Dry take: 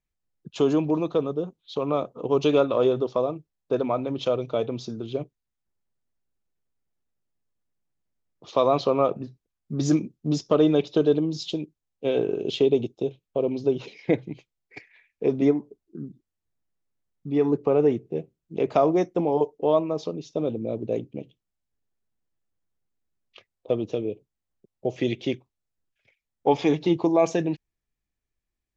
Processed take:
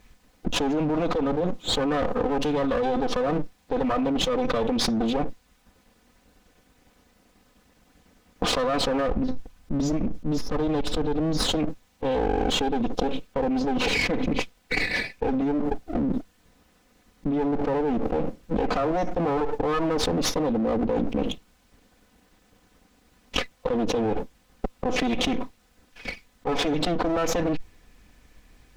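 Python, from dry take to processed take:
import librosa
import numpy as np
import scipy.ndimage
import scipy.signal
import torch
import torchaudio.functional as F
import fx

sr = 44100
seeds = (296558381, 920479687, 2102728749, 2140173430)

y = fx.lower_of_two(x, sr, delay_ms=4.0)
y = fx.low_shelf(y, sr, hz=110.0, db=10.5, at=(9.08, 11.43))
y = 10.0 ** (-12.0 / 20.0) * np.tanh(y / 10.0 ** (-12.0 / 20.0))
y = fx.high_shelf(y, sr, hz=6200.0, db=-10.5)
y = fx.env_flatten(y, sr, amount_pct=100)
y = y * 10.0 ** (-6.5 / 20.0)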